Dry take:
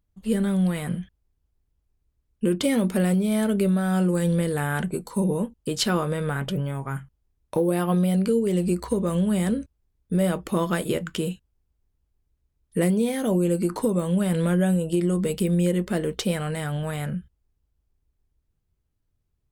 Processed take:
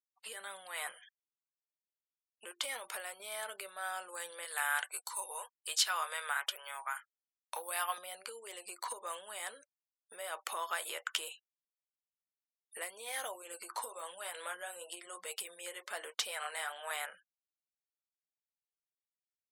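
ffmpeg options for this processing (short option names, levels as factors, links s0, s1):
-filter_complex "[0:a]asettb=1/sr,asplit=3[s0][s1][s2];[s0]atrim=end=2.514[s3];[s1]atrim=start=2.51:end=3.2,asetpts=PTS-STARTPTS,afade=t=in:d=0.004:c=qsin,afade=t=out:st=0.686:d=0.004:c=qsin,acompressor=threshold=0.0501:ratio=4:attack=3.2:release=140:knee=1:detection=peak[s4];[s2]atrim=start=3.196[s5];[s3][s4]acrossfade=d=0.004:c1=hsin:c2=qsin[s6];[s6][s5]acrossfade=d=0.004:c1=qsin:c2=hsin,asettb=1/sr,asplit=3[s7][s8][s9];[s7]atrim=end=4.454[s10];[s8]atrim=start=4.45:end=7.98,asetpts=PTS-STARTPTS,afade=t=in:d=0.004:c=qsin,afade=t=out:st=3.526:d=0.004:c=qsin,highpass=f=1400:p=1[s11];[s9]atrim=start=7.976[s12];[s10][s11]acrossfade=d=0.004:c1=hsin:c2=qsin[s13];[s13][s12]acrossfade=d=0.004:c1=qsin:c2=hsin,asettb=1/sr,asplit=3[s14][s15][s16];[s14]atrim=end=13.424[s17];[s15]atrim=start=13.42:end=16.91,asetpts=PTS-STARTPTS,afade=t=in:d=0.004:c=qsin,afade=t=out:st=3.486:d=0.004:c=qsin,flanger=delay=1:depth=8.1:regen=-52:speed=1.1:shape=triangular[s18];[s16]atrim=start=16.906[s19];[s17][s18]acrossfade=d=0.004:c1=hsin:c2=qsin[s20];[s20][s19]acrossfade=d=0.004:c1=qsin:c2=hsin,acompressor=threshold=0.0447:ratio=12,highpass=f=780:w=0.5412,highpass=f=780:w=1.3066,afftfilt=real='re*gte(hypot(re,im),0.00112)':imag='im*gte(hypot(re,im),0.00112)':win_size=1024:overlap=0.75,volume=1.19"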